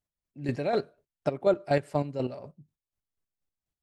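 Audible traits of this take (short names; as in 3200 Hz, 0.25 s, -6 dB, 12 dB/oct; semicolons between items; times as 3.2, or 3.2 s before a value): chopped level 4.1 Hz, depth 60%, duty 30%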